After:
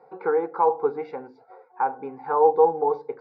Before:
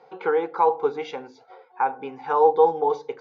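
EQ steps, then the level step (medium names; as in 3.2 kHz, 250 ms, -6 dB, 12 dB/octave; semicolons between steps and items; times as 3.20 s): boxcar filter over 14 samples; 0.0 dB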